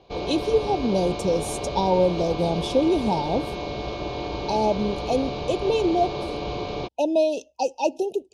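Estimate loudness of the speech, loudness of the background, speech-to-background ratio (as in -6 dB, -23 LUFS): -24.5 LUFS, -30.5 LUFS, 6.0 dB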